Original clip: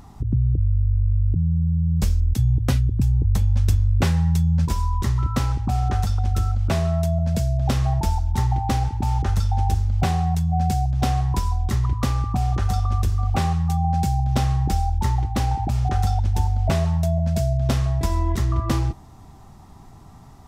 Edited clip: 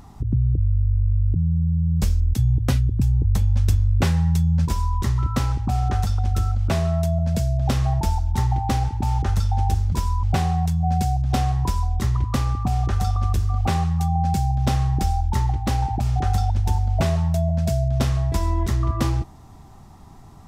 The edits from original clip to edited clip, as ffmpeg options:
ffmpeg -i in.wav -filter_complex "[0:a]asplit=3[link_01][link_02][link_03];[link_01]atrim=end=9.922[link_04];[link_02]atrim=start=4.648:end=4.962[link_05];[link_03]atrim=start=9.918[link_06];[link_04][link_05]acrossfade=duration=0.004:curve1=hsin:curve2=hsin[link_07];[link_07][link_06]acrossfade=duration=0.004:curve1=hsin:curve2=hsin" out.wav

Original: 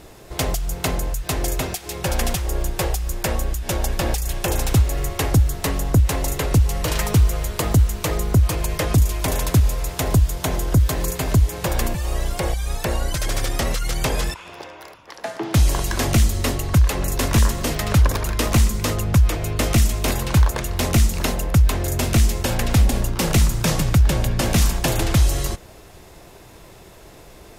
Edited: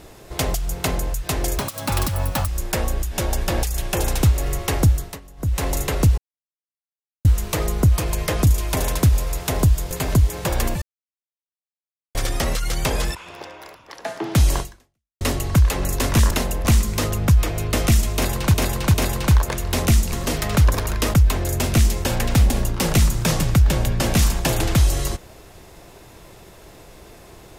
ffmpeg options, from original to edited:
ffmpeg -i in.wav -filter_complex "[0:a]asplit=17[link_01][link_02][link_03][link_04][link_05][link_06][link_07][link_08][link_09][link_10][link_11][link_12][link_13][link_14][link_15][link_16][link_17];[link_01]atrim=end=1.584[link_18];[link_02]atrim=start=1.58:end=2.99,asetpts=PTS-STARTPTS,asetrate=69237,aresample=44100[link_19];[link_03]atrim=start=2.986:end=5.71,asetpts=PTS-STARTPTS,afade=type=out:start_time=2.444:duration=0.28:silence=0.0891251[link_20];[link_04]atrim=start=5.71:end=5.88,asetpts=PTS-STARTPTS,volume=-21dB[link_21];[link_05]atrim=start=5.88:end=6.69,asetpts=PTS-STARTPTS,afade=type=in:duration=0.28:silence=0.0891251,afade=type=out:start_time=0.806:duration=0.004:curve=hsin[link_22];[link_06]atrim=start=6.69:end=7.76,asetpts=PTS-STARTPTS,volume=0[link_23];[link_07]atrim=start=7.76:end=10.422,asetpts=PTS-STARTPTS,afade=type=in:duration=0.004:curve=hsin[link_24];[link_08]atrim=start=11.098:end=12.01,asetpts=PTS-STARTPTS,afade=type=out:start_time=0.908:duration=0.004:curve=hsin[link_25];[link_09]atrim=start=12.01:end=13.34,asetpts=PTS-STARTPTS,volume=0[link_26];[link_10]atrim=start=13.34:end=16.4,asetpts=PTS-STARTPTS,afade=type=in:duration=0.004:curve=hsin,afade=type=out:start_time=2.44:duration=0.62:curve=exp[link_27];[link_11]atrim=start=16.4:end=17.502,asetpts=PTS-STARTPTS,afade=type=in:duration=0.004:curve=hsin[link_28];[link_12]atrim=start=21.188:end=21.532[link_29];[link_13]atrim=start=18.508:end=20.402[link_30];[link_14]atrim=start=19.998:end=20.402[link_31];[link_15]atrim=start=19.998:end=21.192[link_32];[link_16]atrim=start=17.498:end=18.512[link_33];[link_17]atrim=start=21.528[link_34];[link_18][link_19]acrossfade=duration=0.004:curve1=hsin:curve2=hsin[link_35];[link_20][link_21][link_22][link_23][link_24]concat=n=5:v=0:a=1[link_36];[link_35][link_36]acrossfade=duration=0.004:curve1=hsin:curve2=hsin[link_37];[link_25][link_26][link_27][link_28]concat=n=4:v=0:a=1[link_38];[link_37][link_38]acrossfade=duration=0.004:curve1=hsin:curve2=hsin[link_39];[link_39][link_29]acrossfade=duration=0.004:curve1=hsin:curve2=hsin[link_40];[link_40][link_30]acrossfade=duration=0.004:curve1=hsin:curve2=hsin[link_41];[link_41][link_31]acrossfade=duration=0.004:curve1=hsin:curve2=hsin[link_42];[link_42][link_32]acrossfade=duration=0.004:curve1=hsin:curve2=hsin[link_43];[link_43][link_33]acrossfade=duration=0.004:curve1=hsin:curve2=hsin[link_44];[link_44][link_34]acrossfade=duration=0.004:curve1=hsin:curve2=hsin" out.wav

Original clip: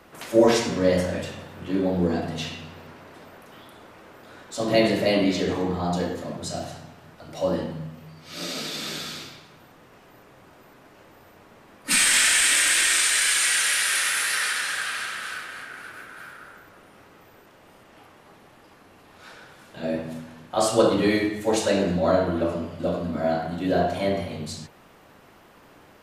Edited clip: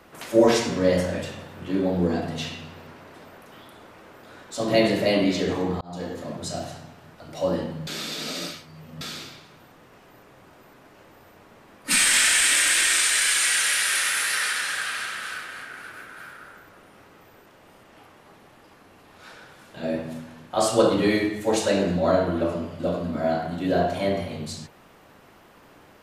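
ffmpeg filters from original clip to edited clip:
ffmpeg -i in.wav -filter_complex "[0:a]asplit=4[link_01][link_02][link_03][link_04];[link_01]atrim=end=5.81,asetpts=PTS-STARTPTS,afade=type=out:start_time=5.806:duration=0.004:curve=hsin[link_05];[link_02]atrim=start=5.81:end=7.872,asetpts=PTS-STARTPTS,afade=type=in:duration=0.64:curve=qsin[link_06];[link_03]atrim=start=7.868:end=9.012,asetpts=PTS-STARTPTS,areverse[link_07];[link_04]atrim=start=9.008[link_08];[link_05][link_06]concat=n=2:v=0:a=1[link_09];[link_09][link_07]acrossfade=duration=0.004:curve1=hsin:curve2=hsin[link_10];[link_10][link_08]acrossfade=duration=0.004:curve1=hsin:curve2=hsin" out.wav

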